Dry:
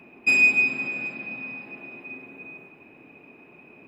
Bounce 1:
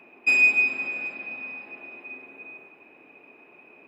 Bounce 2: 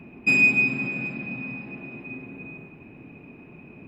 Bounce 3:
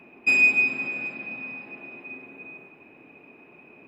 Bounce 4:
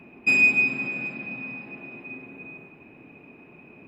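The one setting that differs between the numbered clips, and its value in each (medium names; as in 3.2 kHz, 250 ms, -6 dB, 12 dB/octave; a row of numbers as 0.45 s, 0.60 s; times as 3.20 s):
tone controls, bass: -15 dB, +15 dB, -3 dB, +6 dB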